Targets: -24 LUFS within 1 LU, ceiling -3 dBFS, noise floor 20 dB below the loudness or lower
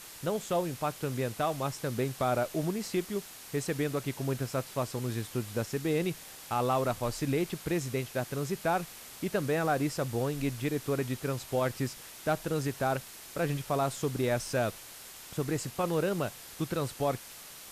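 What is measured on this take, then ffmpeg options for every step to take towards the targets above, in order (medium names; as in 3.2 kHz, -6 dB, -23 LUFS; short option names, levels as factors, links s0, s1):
noise floor -48 dBFS; noise floor target -53 dBFS; loudness -32.5 LUFS; peak level -18.5 dBFS; loudness target -24.0 LUFS
-> -af "afftdn=nr=6:nf=-48"
-af "volume=2.66"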